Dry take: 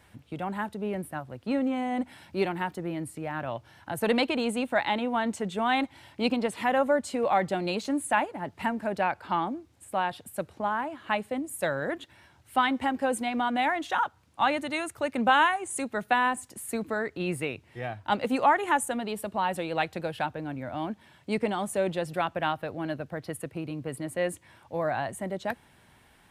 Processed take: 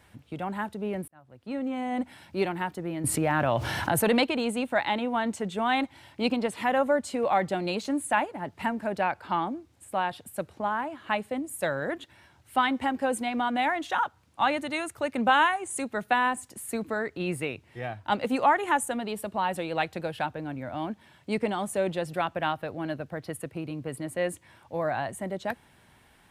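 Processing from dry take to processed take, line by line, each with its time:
0:01.08–0:01.96: fade in
0:03.04–0:04.24: envelope flattener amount 70%

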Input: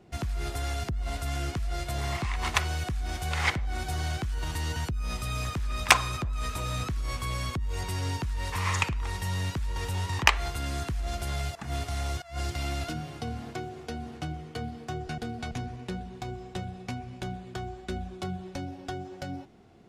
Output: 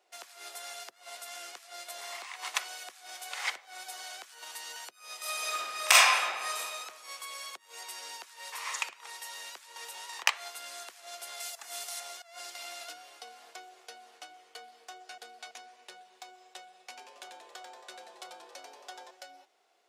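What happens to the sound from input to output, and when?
0:05.18–0:06.58: thrown reverb, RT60 1.4 s, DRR −8.5 dB
0:11.40–0:12.00: high-shelf EQ 5,100 Hz +11 dB
0:16.81–0:19.11: echo with shifted repeats 91 ms, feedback 53%, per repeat +150 Hz, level −6 dB
whole clip: high-pass filter 530 Hz 24 dB per octave; high-shelf EQ 3,000 Hz +9 dB; level −9 dB

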